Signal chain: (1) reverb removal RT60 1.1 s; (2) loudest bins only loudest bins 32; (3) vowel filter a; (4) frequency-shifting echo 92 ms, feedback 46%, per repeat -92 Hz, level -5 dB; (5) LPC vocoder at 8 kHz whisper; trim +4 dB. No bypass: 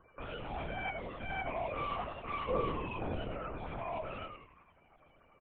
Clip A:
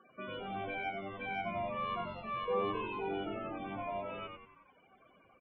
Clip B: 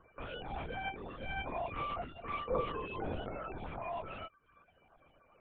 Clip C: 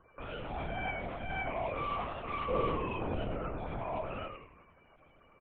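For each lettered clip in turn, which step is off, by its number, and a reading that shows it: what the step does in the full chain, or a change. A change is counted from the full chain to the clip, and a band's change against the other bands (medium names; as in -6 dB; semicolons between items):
5, 125 Hz band -6.0 dB; 4, loudness change -1.5 LU; 1, loudness change +2.0 LU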